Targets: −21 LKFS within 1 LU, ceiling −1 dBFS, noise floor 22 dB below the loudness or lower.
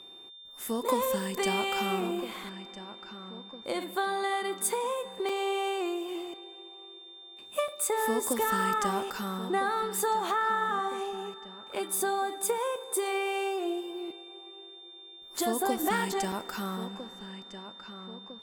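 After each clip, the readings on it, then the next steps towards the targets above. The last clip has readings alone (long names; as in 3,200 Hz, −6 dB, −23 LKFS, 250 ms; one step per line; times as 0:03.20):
number of dropouts 3; longest dropout 3.6 ms; interfering tone 3,600 Hz; level of the tone −47 dBFS; integrated loudness −31.0 LKFS; sample peak −14.5 dBFS; target loudness −21.0 LKFS
→ repair the gap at 0:05.29/0:07.68/0:16.32, 3.6 ms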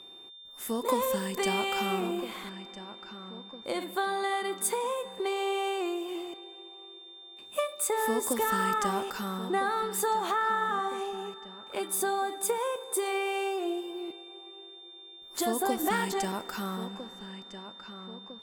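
number of dropouts 0; interfering tone 3,600 Hz; level of the tone −47 dBFS
→ notch filter 3,600 Hz, Q 30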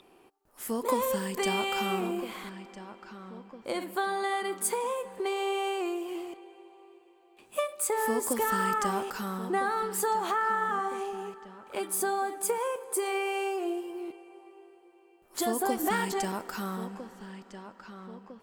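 interfering tone none found; integrated loudness −31.0 LKFS; sample peak −14.5 dBFS; target loudness −21.0 LKFS
→ level +10 dB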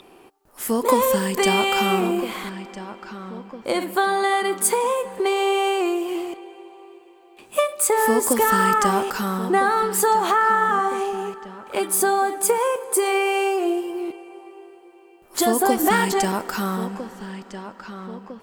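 integrated loudness −21.0 LKFS; sample peak −4.5 dBFS; background noise floor −50 dBFS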